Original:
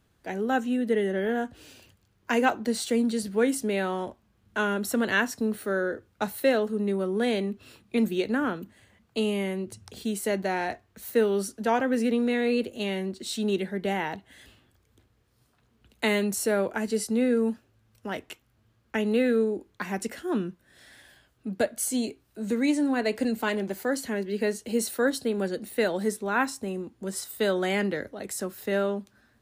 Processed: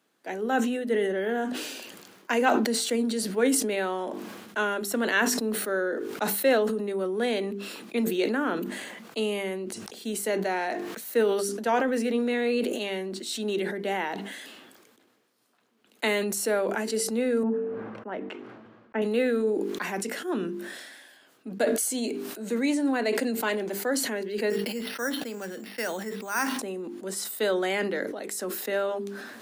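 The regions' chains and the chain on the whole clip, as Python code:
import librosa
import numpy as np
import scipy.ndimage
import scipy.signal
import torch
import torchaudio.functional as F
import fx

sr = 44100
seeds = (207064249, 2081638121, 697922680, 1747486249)

y = fx.chain(x, sr, fx.lowpass(hz=1400.0, slope=12),
    fx.low_shelf(hz=70.0, db=11.5),
    fx.band_widen(depth_pct=40), at=(17.43, 19.02))
y = fx.chain(y, sr, fx.peak_eq(hz=400.0, db=-10.0, octaves=1.9),
    fx.resample_bad(factor=6, down='filtered', up='hold'), at=(24.5, 26.59))
y = scipy.signal.sosfilt(scipy.signal.butter(4, 230.0, 'highpass', fs=sr, output='sos'), y)
y = fx.hum_notches(y, sr, base_hz=50, count=9)
y = fx.sustainer(y, sr, db_per_s=35.0)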